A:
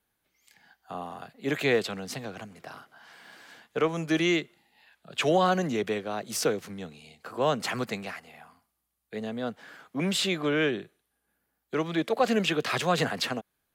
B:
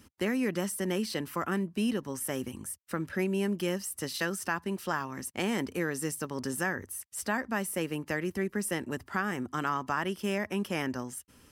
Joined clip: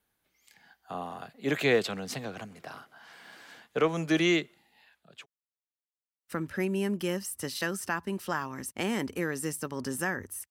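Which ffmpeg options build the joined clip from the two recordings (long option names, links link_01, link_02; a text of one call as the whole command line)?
ffmpeg -i cue0.wav -i cue1.wav -filter_complex "[0:a]apad=whole_dur=10.5,atrim=end=10.5,asplit=2[link_01][link_02];[link_01]atrim=end=5.26,asetpts=PTS-STARTPTS,afade=type=out:start_time=4.75:duration=0.51[link_03];[link_02]atrim=start=5.26:end=6.23,asetpts=PTS-STARTPTS,volume=0[link_04];[1:a]atrim=start=2.82:end=7.09,asetpts=PTS-STARTPTS,afade=type=in:duration=0.004:curve=hsin[link_05];[link_03][link_04][link_05]concat=n=3:v=0:a=1" out.wav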